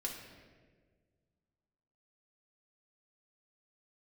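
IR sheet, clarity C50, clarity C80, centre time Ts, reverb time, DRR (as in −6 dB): 4.5 dB, 6.0 dB, 48 ms, 1.6 s, −1.5 dB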